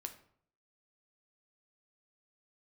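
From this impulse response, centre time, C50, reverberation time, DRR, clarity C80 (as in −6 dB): 9 ms, 12.0 dB, 0.60 s, 6.0 dB, 16.0 dB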